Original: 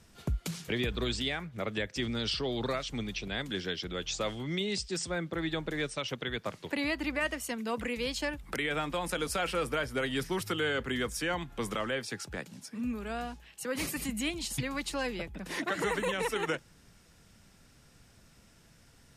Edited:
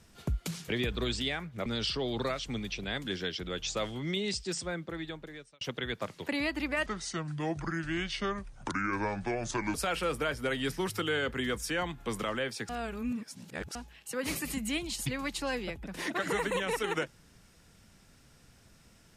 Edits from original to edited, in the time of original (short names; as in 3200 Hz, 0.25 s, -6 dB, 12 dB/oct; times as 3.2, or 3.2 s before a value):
1.66–2.1 cut
4.91–6.05 fade out
7.3–9.26 speed 68%
12.21–13.27 reverse